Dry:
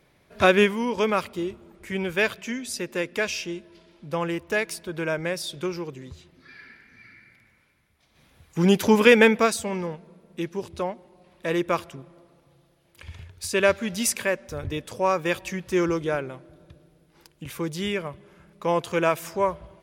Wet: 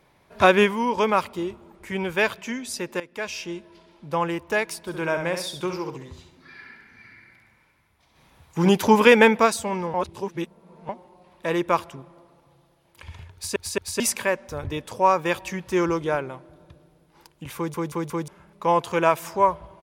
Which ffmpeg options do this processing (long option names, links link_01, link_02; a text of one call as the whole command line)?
ffmpeg -i in.wav -filter_complex "[0:a]asplit=3[link_01][link_02][link_03];[link_01]afade=type=out:start_time=4.86:duration=0.02[link_04];[link_02]aecho=1:1:67|134|201|268:0.447|0.165|0.0612|0.0226,afade=type=in:start_time=4.86:duration=0.02,afade=type=out:start_time=8.69:duration=0.02[link_05];[link_03]afade=type=in:start_time=8.69:duration=0.02[link_06];[link_04][link_05][link_06]amix=inputs=3:normalize=0,asplit=11[link_07][link_08][link_09][link_10][link_11][link_12][link_13][link_14][link_15][link_16][link_17];[link_07]atrim=end=3,asetpts=PTS-STARTPTS,afade=type=out:start_time=2.996:duration=0.004:curve=hsin:silence=0.158489[link_18];[link_08]atrim=start=3:end=9.942,asetpts=PTS-STARTPTS,afade=type=in:duration=0.56:silence=0.158489[link_19];[link_09]atrim=start=9.938:end=10.892,asetpts=PTS-STARTPTS,areverse[link_20];[link_10]atrim=start=10.888:end=13.562[link_21];[link_11]atrim=start=13.338:end=13.562[link_22];[link_12]atrim=start=13.338:end=13.562[link_23];[link_13]atrim=start=13.998:end=17.742[link_24];[link_14]atrim=start=17.558:end=17.742[link_25];[link_15]atrim=start=17.558:end=17.742[link_26];[link_16]atrim=start=17.558:end=17.742[link_27];[link_17]atrim=start=18.278[link_28];[link_18][link_19]concat=n=2:v=0:a=1[link_29];[link_29][link_20]acrossfade=duration=0.004:curve1=hsin:curve2=hsin[link_30];[link_30][link_21]acrossfade=duration=0.004:curve1=hsin:curve2=hsin[link_31];[link_31][link_22]acrossfade=duration=0.004:curve1=hsin:curve2=hsin[link_32];[link_32][link_23]acrossfade=duration=0.004:curve1=hsin:curve2=hsin[link_33];[link_33][link_24]acrossfade=duration=0.004:curve1=hsin:curve2=hsin[link_34];[link_34][link_25]acrossfade=duration=0.004:curve1=hsin:curve2=hsin[link_35];[link_35][link_26]acrossfade=duration=0.004:curve1=hsin:curve2=hsin[link_36];[link_36][link_27]acrossfade=duration=0.004:curve1=hsin:curve2=hsin[link_37];[link_37][link_28]acrossfade=duration=0.004:curve1=hsin:curve2=hsin,equalizer=frequency=930:width_type=o:width=0.65:gain=8" out.wav